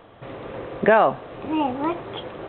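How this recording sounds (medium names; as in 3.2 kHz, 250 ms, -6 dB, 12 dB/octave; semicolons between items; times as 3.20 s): noise floor -49 dBFS; spectral tilt -4.0 dB/octave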